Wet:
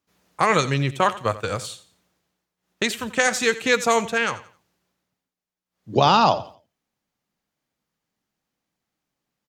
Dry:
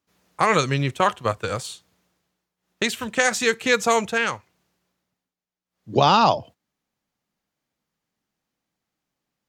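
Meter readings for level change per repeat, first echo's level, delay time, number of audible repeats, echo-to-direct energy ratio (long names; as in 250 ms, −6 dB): −10.5 dB, −16.5 dB, 87 ms, 2, −16.0 dB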